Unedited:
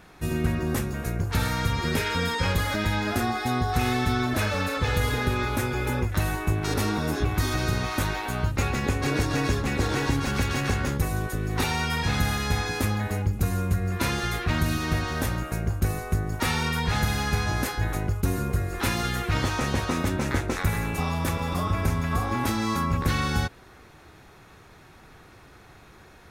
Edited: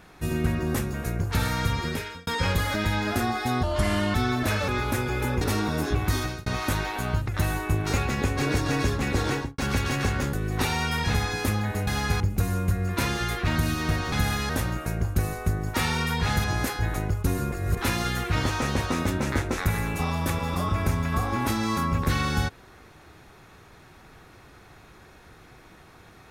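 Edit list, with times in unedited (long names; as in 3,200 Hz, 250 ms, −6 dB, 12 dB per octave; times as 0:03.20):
0:01.72–0:02.27: fade out
0:03.63–0:04.05: play speed 82%
0:04.59–0:05.33: remove
0:06.06–0:06.71: move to 0:08.58
0:07.47–0:07.76: fade out
0:09.95–0:10.23: fade out and dull
0:10.98–0:11.32: remove
0:12.13–0:12.50: move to 0:15.15
0:17.10–0:17.43: move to 0:13.23
0:18.51–0:18.76: reverse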